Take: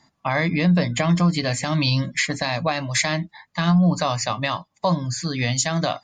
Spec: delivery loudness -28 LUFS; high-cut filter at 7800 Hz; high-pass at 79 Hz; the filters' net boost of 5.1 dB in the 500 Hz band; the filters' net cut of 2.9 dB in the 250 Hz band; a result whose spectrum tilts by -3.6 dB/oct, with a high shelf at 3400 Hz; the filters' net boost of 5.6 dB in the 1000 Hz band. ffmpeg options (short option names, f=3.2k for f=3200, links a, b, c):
-af "highpass=79,lowpass=7.8k,equalizer=f=250:t=o:g=-6.5,equalizer=f=500:t=o:g=5.5,equalizer=f=1k:t=o:g=5,highshelf=f=3.4k:g=7.5,volume=-8dB"